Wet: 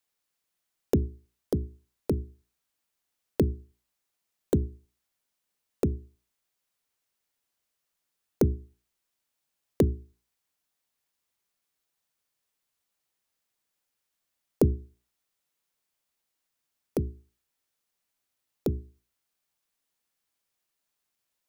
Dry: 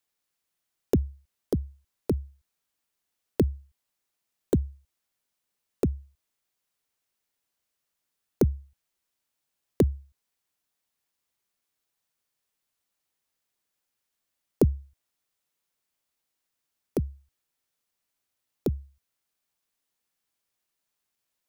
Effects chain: hum notches 60/120/180/240/300/360/420 Hz

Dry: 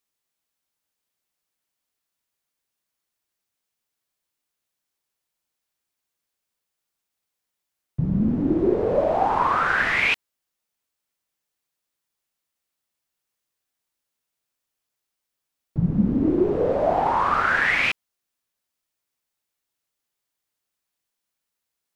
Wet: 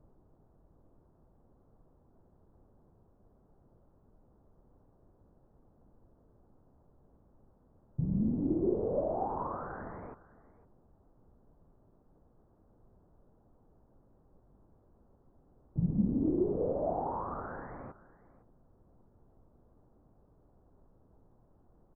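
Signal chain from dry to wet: added noise pink -52 dBFS; Gaussian low-pass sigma 10 samples; delay 509 ms -19 dB; trim -8.5 dB

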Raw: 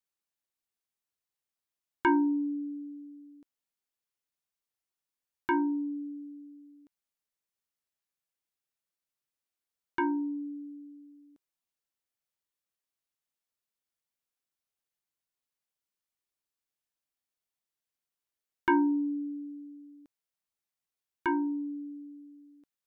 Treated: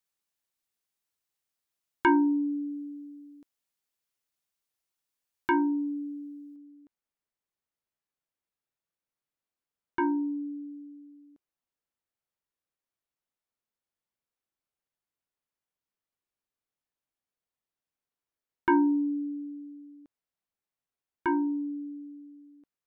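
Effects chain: treble shelf 2.6 kHz +2 dB, from 6.56 s -10.5 dB; trim +2.5 dB

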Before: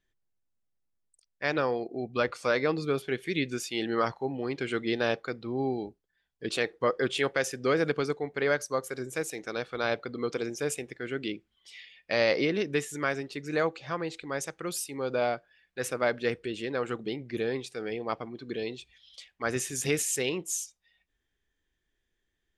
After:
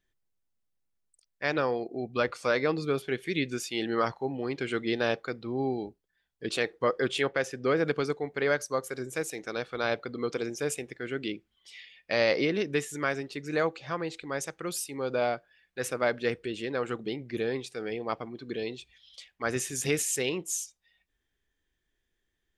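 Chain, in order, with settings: 7.23–7.88 s: low-pass 3 kHz 6 dB/octave

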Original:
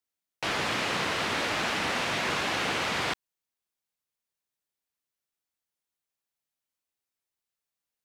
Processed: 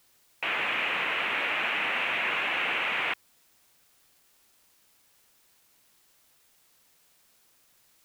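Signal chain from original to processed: high-pass 610 Hz 6 dB/octave; resonant high shelf 3.6 kHz -11.5 dB, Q 3; in parallel at -3 dB: peak limiter -25 dBFS, peak gain reduction 9 dB; on the sum: word length cut 10-bit, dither triangular; trim -4 dB

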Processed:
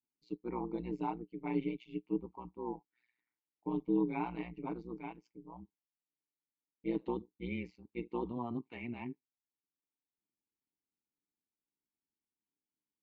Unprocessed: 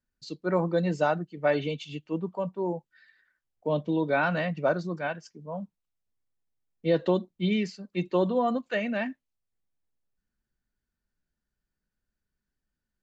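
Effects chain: vowel filter u; AM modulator 120 Hz, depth 80%; trim +5 dB

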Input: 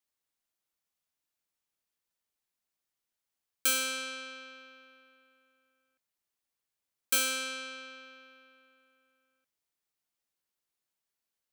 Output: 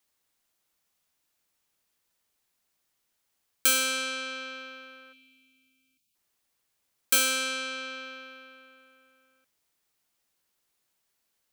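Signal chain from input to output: time-frequency box 5.13–6.15 s, 340–2200 Hz -23 dB; in parallel at +1.5 dB: compression, threshold -44 dBFS, peak gain reduction 19 dB; on the sum: trim +3.5 dB

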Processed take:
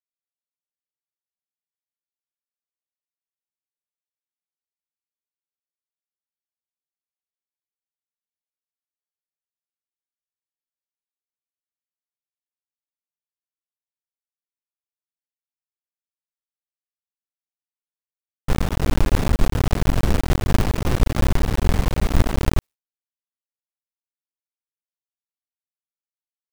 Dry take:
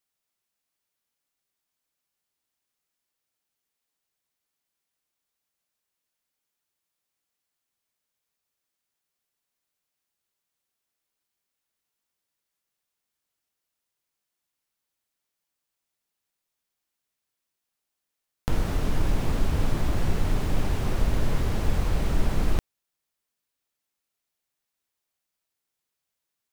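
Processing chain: cycle switcher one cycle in 2, muted; expander -33 dBFS; trim +7 dB

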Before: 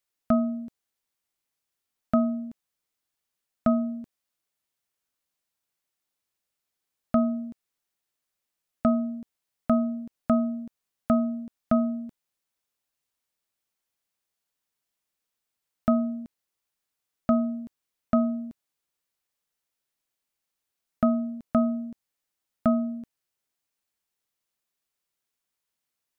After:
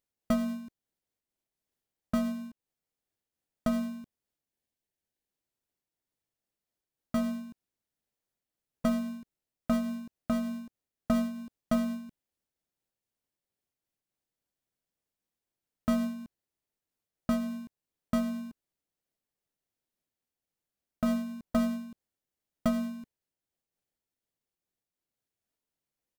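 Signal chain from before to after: spectral selection erased 4.46–5.29 s, 430–1500 Hz; in parallel at -5.5 dB: sample-rate reducer 1.3 kHz, jitter 0%; on the sum: harmony voices -4 st -15 dB; random flutter of the level, depth 60%; trim -5.5 dB

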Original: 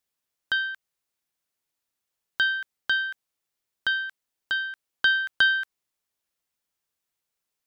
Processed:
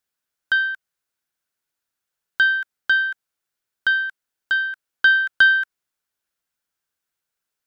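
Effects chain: peaking EQ 1.5 kHz +8 dB 0.33 oct

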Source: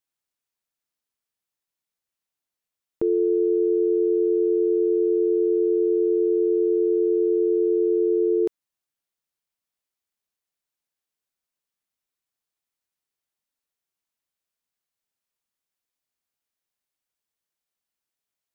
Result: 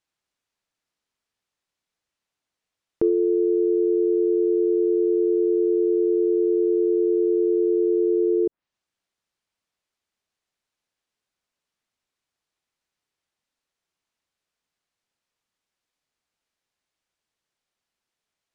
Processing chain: peak limiter -18.5 dBFS, peak gain reduction 4 dB; distance through air 60 m; low-pass that closes with the level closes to 410 Hz, closed at -21.5 dBFS; trim +7 dB

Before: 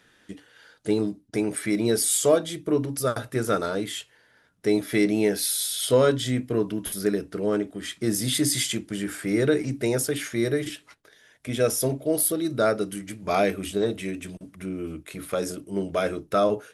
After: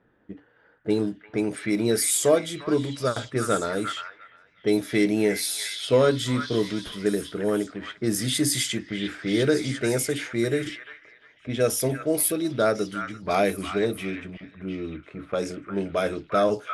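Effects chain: repeats whose band climbs or falls 350 ms, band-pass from 1.6 kHz, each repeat 0.7 oct, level -3 dB; level-controlled noise filter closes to 930 Hz, open at -20 dBFS

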